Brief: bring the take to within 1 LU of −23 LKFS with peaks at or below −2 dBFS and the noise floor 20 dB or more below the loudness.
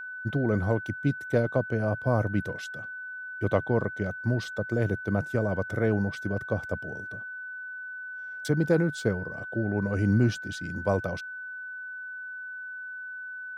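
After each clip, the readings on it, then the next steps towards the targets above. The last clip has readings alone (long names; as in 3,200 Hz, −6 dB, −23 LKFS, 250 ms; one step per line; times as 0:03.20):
interfering tone 1,500 Hz; level of the tone −36 dBFS; integrated loudness −29.5 LKFS; sample peak −9.5 dBFS; target loudness −23.0 LKFS
→ notch filter 1,500 Hz, Q 30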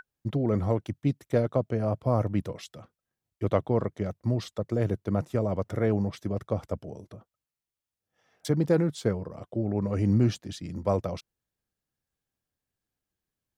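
interfering tone none found; integrated loudness −28.5 LKFS; sample peak −10.0 dBFS; target loudness −23.0 LKFS
→ level +5.5 dB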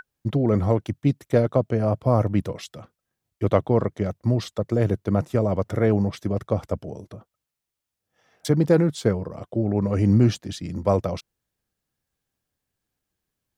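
integrated loudness −23.0 LKFS; sample peak −4.5 dBFS; background noise floor −85 dBFS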